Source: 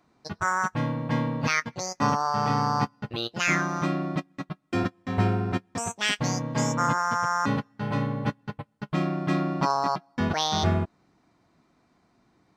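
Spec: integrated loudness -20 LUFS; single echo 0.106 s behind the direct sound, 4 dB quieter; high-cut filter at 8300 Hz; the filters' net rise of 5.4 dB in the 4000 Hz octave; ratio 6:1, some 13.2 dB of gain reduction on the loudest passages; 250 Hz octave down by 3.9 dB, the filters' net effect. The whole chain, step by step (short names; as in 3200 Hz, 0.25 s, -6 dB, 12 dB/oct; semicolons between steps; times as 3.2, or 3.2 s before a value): LPF 8300 Hz; bell 250 Hz -5.5 dB; bell 4000 Hz +7 dB; compressor 6:1, threshold -33 dBFS; echo 0.106 s -4 dB; gain +15.5 dB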